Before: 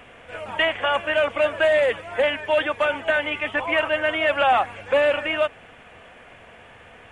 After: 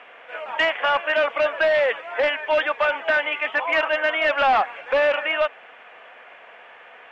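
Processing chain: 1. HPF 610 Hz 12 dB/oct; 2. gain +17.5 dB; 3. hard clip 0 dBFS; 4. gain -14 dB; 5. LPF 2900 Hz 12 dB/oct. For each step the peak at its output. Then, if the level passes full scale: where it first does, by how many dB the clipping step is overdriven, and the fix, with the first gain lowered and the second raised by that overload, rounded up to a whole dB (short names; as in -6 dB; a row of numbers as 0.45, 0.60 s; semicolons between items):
-10.5, +7.0, 0.0, -14.0, -13.5 dBFS; step 2, 7.0 dB; step 2 +10.5 dB, step 4 -7 dB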